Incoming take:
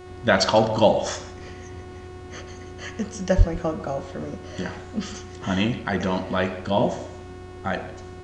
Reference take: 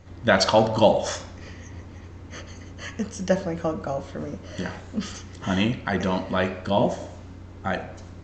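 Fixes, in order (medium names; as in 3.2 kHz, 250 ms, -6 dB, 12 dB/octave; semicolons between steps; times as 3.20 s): de-hum 365.6 Hz, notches 28; de-plosive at 3.37 s; inverse comb 148 ms -18.5 dB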